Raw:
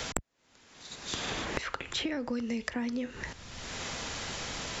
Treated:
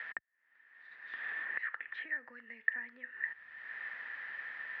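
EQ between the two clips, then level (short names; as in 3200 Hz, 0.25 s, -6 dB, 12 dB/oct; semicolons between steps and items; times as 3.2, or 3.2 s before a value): band-pass 1800 Hz, Q 19; air absorption 410 m; +14.5 dB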